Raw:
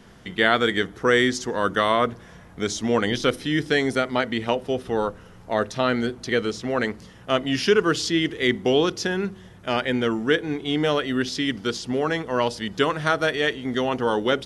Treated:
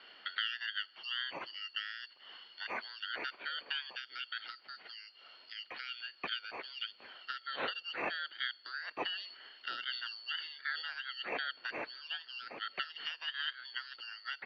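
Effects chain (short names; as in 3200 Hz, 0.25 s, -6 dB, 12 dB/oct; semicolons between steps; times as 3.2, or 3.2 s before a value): four-band scrambler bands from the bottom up 4321; compressor 6:1, threshold -32 dBFS, peak gain reduction 17.5 dB; mistuned SSB -180 Hz 480–3200 Hz; 9.07–10.89 sustainer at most 71 dB/s; gain +3.5 dB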